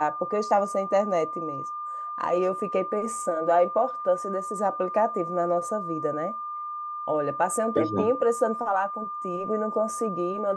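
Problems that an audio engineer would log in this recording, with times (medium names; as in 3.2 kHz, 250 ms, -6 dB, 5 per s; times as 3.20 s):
whine 1.2 kHz -31 dBFS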